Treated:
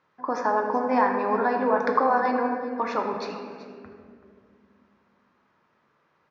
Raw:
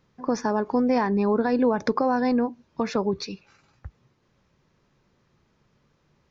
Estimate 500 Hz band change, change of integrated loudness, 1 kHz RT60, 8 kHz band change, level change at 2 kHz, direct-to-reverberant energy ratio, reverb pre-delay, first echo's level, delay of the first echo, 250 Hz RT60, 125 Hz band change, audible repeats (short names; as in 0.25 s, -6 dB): -0.5 dB, 0.0 dB, 1.7 s, n/a, +4.5 dB, 1.5 dB, 3 ms, -15.5 dB, 0.381 s, 3.6 s, under -10 dB, 1